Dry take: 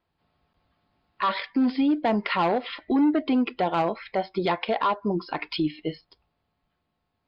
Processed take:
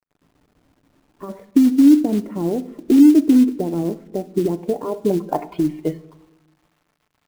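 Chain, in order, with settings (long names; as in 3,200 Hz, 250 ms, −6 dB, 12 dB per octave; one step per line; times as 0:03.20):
downward compressor 2.5 to 1, threshold −26 dBFS, peak gain reduction 5.5 dB
low-pass filter sweep 320 Hz → 1,100 Hz, 0:04.60–0:05.90
log-companded quantiser 6 bits
on a send: convolution reverb RT60 0.90 s, pre-delay 7 ms, DRR 13 dB
on the sum: level +7.5 dB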